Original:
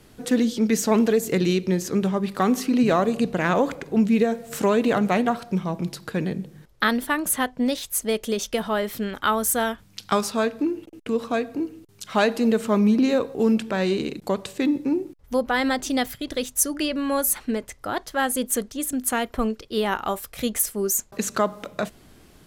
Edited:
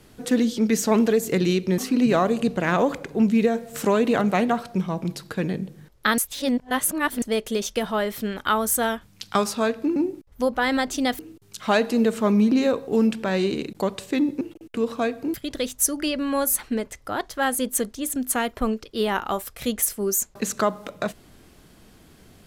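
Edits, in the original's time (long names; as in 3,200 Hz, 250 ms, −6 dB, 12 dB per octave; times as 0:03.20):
0:01.78–0:02.55: remove
0:06.95–0:07.99: reverse
0:10.73–0:11.66: swap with 0:14.88–0:16.11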